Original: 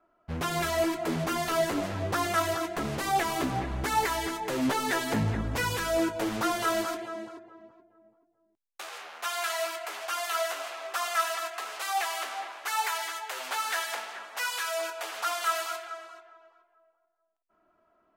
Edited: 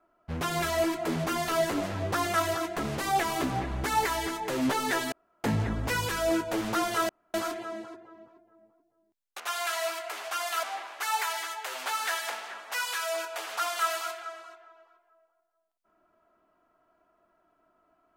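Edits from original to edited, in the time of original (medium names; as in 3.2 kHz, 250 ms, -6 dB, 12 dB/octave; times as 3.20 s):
5.12 s: insert room tone 0.32 s
6.77 s: insert room tone 0.25 s
8.83–9.17 s: delete
10.40–12.28 s: delete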